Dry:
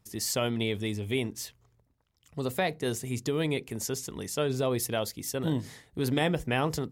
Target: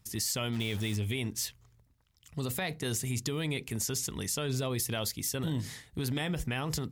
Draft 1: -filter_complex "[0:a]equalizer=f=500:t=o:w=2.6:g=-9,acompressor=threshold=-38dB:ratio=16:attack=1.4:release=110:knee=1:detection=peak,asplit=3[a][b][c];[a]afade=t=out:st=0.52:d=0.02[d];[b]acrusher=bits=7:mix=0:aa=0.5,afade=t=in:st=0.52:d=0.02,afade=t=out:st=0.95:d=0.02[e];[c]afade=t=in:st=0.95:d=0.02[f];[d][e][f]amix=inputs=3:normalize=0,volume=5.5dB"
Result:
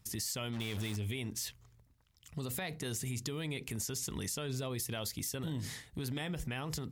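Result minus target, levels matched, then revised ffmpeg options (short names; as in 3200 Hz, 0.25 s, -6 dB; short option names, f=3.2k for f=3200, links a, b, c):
compressor: peak gain reduction +5.5 dB
-filter_complex "[0:a]equalizer=f=500:t=o:w=2.6:g=-9,acompressor=threshold=-32dB:ratio=16:attack=1.4:release=110:knee=1:detection=peak,asplit=3[a][b][c];[a]afade=t=out:st=0.52:d=0.02[d];[b]acrusher=bits=7:mix=0:aa=0.5,afade=t=in:st=0.52:d=0.02,afade=t=out:st=0.95:d=0.02[e];[c]afade=t=in:st=0.95:d=0.02[f];[d][e][f]amix=inputs=3:normalize=0,volume=5.5dB"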